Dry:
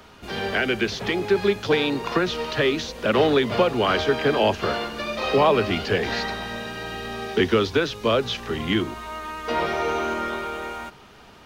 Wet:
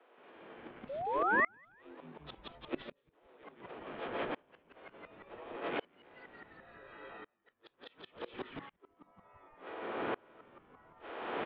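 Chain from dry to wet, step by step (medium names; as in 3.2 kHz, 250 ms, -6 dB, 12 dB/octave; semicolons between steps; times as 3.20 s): spectral levelling over time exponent 0.4; compressor with a negative ratio -19 dBFS, ratio -0.5; flange 1.1 Hz, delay 6.4 ms, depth 4.4 ms, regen +82%; spectral noise reduction 18 dB; mistuned SSB +61 Hz 280–3100 Hz; harmony voices -5 st -4 dB; inverted gate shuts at -28 dBFS, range -29 dB; painted sound rise, 0.89–1.48 s, 520–2200 Hz -37 dBFS; frequency-shifting echo 172 ms, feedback 43%, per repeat -100 Hz, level -3 dB; sawtooth tremolo in dB swelling 0.69 Hz, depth 32 dB; trim +8.5 dB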